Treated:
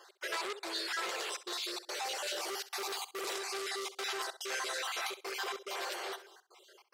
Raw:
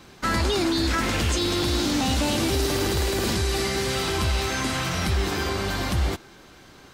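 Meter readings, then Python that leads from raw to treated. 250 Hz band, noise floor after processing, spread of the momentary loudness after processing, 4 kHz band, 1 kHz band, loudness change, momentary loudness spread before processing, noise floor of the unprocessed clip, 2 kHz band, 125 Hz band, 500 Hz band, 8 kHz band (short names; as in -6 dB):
-25.0 dB, -69 dBFS, 3 LU, -10.5 dB, -10.5 dB, -13.0 dB, 3 LU, -49 dBFS, -9.5 dB, under -40 dB, -14.0 dB, -10.5 dB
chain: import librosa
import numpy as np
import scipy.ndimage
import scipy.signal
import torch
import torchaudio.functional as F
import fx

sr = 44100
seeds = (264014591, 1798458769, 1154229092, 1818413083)

y = fx.spec_dropout(x, sr, seeds[0], share_pct=35)
y = fx.rider(y, sr, range_db=10, speed_s=2.0)
y = fx.step_gate(y, sr, bpm=143, pattern='x.xxx.xxxxxx', floor_db=-60.0, edge_ms=4.5)
y = fx.brickwall_highpass(y, sr, low_hz=350.0)
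y = fx.room_flutter(y, sr, wall_m=11.1, rt60_s=0.25)
y = fx.transformer_sat(y, sr, knee_hz=3400.0)
y = y * 10.0 ** (-6.0 / 20.0)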